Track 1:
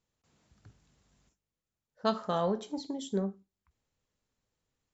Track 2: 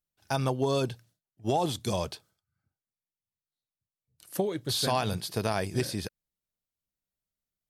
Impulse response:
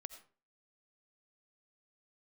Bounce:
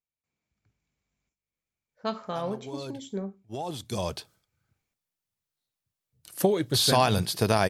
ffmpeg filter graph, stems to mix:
-filter_complex "[0:a]equalizer=frequency=2300:width=6.5:gain=14,volume=-7dB,afade=type=in:start_time=1.33:duration=0.28:silence=0.266073,asplit=2[link_01][link_02];[1:a]adelay=2050,volume=1dB[link_03];[link_02]apad=whole_len=429602[link_04];[link_03][link_04]sidechaincompress=threshold=-56dB:ratio=5:attack=16:release=782[link_05];[link_01][link_05]amix=inputs=2:normalize=0,dynaudnorm=framelen=430:gausssize=3:maxgain=5dB"

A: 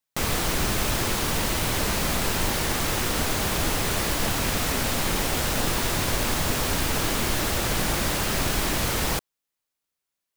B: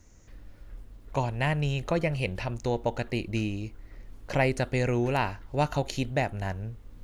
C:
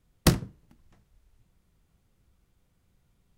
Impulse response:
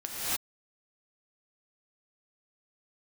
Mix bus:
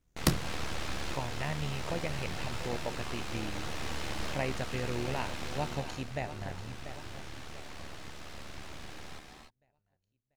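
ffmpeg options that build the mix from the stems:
-filter_complex "[0:a]lowpass=4700,aeval=exprs='abs(val(0))':channel_layout=same,volume=-11.5dB,afade=type=out:start_time=5.41:duration=0.43:silence=0.354813,asplit=2[link_01][link_02];[link_02]volume=-6.5dB[link_03];[1:a]agate=range=-33dB:threshold=-45dB:ratio=3:detection=peak,volume=-7dB,asplit=3[link_04][link_05][link_06];[link_05]volume=-11.5dB[link_07];[2:a]volume=-4dB[link_08];[link_06]apad=whole_len=457131[link_09];[link_01][link_09]sidechaincompress=threshold=-39dB:ratio=8:attack=16:release=511[link_10];[3:a]atrim=start_sample=2205[link_11];[link_03][link_11]afir=irnorm=-1:irlink=0[link_12];[link_07]aecho=0:1:690|1380|2070|2760|3450|4140:1|0.45|0.202|0.0911|0.041|0.0185[link_13];[link_10][link_04][link_08][link_12][link_13]amix=inputs=5:normalize=0,tremolo=f=74:d=0.519"

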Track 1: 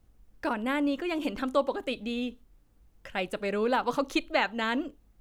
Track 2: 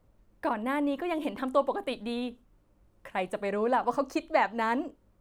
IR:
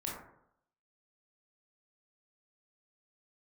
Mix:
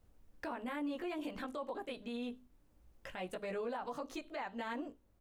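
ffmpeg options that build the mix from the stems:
-filter_complex "[0:a]bandreject=frequency=50:width_type=h:width=6,bandreject=frequency=100:width_type=h:width=6,bandreject=frequency=150:width_type=h:width=6,bandreject=frequency=200:width_type=h:width=6,bandreject=frequency=250:width_type=h:width=6,volume=-4dB[link_01];[1:a]adelay=17,volume=-9dB,asplit=2[link_02][link_03];[link_03]apad=whole_len=229752[link_04];[link_01][link_04]sidechaincompress=threshold=-41dB:ratio=4:attack=8.5:release=982[link_05];[link_05][link_02]amix=inputs=2:normalize=0,alimiter=level_in=8.5dB:limit=-24dB:level=0:latency=1:release=66,volume=-8.5dB"

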